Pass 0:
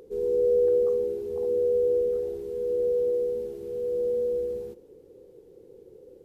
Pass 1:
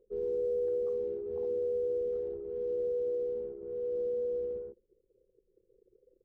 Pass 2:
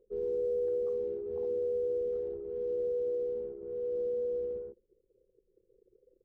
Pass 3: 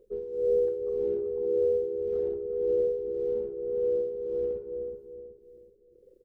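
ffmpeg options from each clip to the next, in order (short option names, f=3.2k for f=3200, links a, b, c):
-af "anlmdn=2.51,acompressor=threshold=-26dB:ratio=3,volume=-4.5dB"
-af anull
-filter_complex "[0:a]tremolo=f=1.8:d=0.8,asplit=2[a][b];[b]adelay=374,lowpass=f=800:p=1,volume=-4.5dB,asplit=2[c][d];[d]adelay=374,lowpass=f=800:p=1,volume=0.42,asplit=2[e][f];[f]adelay=374,lowpass=f=800:p=1,volume=0.42,asplit=2[g][h];[h]adelay=374,lowpass=f=800:p=1,volume=0.42,asplit=2[i][j];[j]adelay=374,lowpass=f=800:p=1,volume=0.42[k];[c][e][g][i][k]amix=inputs=5:normalize=0[l];[a][l]amix=inputs=2:normalize=0,volume=8dB"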